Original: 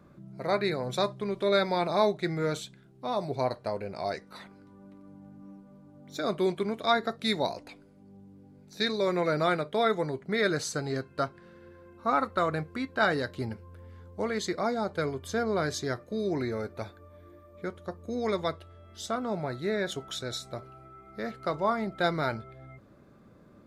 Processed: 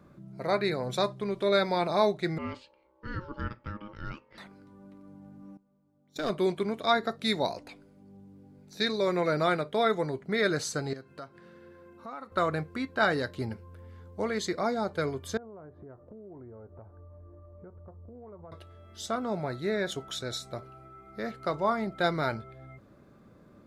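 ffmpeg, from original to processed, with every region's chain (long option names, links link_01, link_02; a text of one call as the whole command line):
ffmpeg -i in.wav -filter_complex "[0:a]asettb=1/sr,asplit=3[link_01][link_02][link_03];[link_01]atrim=end=2.384[link_04];[link_02]atrim=start=2.38:end=4.38,asetpts=PTS-STARTPTS,afade=type=in:duration=0.004:curve=qsin,afade=type=out:start_time=1.996:duration=0.004:curve=qsin,lowpass=2300,aeval=exprs='val(0)*sin(2*PI*720*n/s)':channel_layout=same,equalizer=frequency=910:width=0.81:gain=-10.5[link_05];[link_03]atrim=start=4.376[link_06];[link_04][link_05]acrossfade=duration=0.004:curve1=hsin:curve2=qsin[link_07];[link_07][link_06]acrossfade=duration=0.004:curve1=qsin:curve2=hsin,asettb=1/sr,asplit=3[link_08][link_09][link_10];[link_08]atrim=end=5.574[link_11];[link_09]atrim=start=5.57:end=6.3,asetpts=PTS-STARTPTS,afade=type=in:duration=0.004:curve=qsin,afade=type=out:start_time=0.726:duration=0.004:curve=qsin,agate=range=-17dB:threshold=-42dB:ratio=16:release=100:detection=peak,aeval=exprs='clip(val(0),-1,0.0299)':channel_layout=same[link_12];[link_10]atrim=start=6.296[link_13];[link_11][link_12]acrossfade=duration=0.004:curve1=hsin:curve2=qsin[link_14];[link_14][link_13]acrossfade=duration=0.004:curve1=qsin:curve2=hsin,asettb=1/sr,asplit=3[link_15][link_16][link_17];[link_15]atrim=end=10.934[link_18];[link_16]atrim=start=10.93:end=12.32,asetpts=PTS-STARTPTS,afade=type=in:duration=0.004:curve=qsin,afade=type=out:start_time=1.386:duration=0.004:curve=qsin,acompressor=threshold=-45dB:ratio=2.5:attack=3.2:release=140:knee=1:detection=peak,highpass=110[link_19];[link_17]atrim=start=12.316[link_20];[link_18][link_19]acrossfade=duration=0.004:curve1=hsin:curve2=qsin[link_21];[link_21][link_20]acrossfade=duration=0.004:curve1=qsin:curve2=hsin,asettb=1/sr,asplit=3[link_22][link_23][link_24];[link_22]atrim=end=15.374[link_25];[link_23]atrim=start=15.37:end=18.52,asetpts=PTS-STARTPTS,afade=type=in:duration=0.004:curve=qsin,afade=type=out:start_time=3.146:duration=0.004:curve=qsin,lowpass=frequency=1100:width=0.5412,lowpass=frequency=1100:width=1.3066,asubboost=boost=6.5:cutoff=100,acompressor=threshold=-46dB:ratio=5:attack=3.2:release=140:knee=1:detection=peak[link_26];[link_24]atrim=start=18.516[link_27];[link_25][link_26]acrossfade=duration=0.004:curve1=hsin:curve2=qsin[link_28];[link_28][link_27]acrossfade=duration=0.004:curve1=qsin:curve2=hsin" out.wav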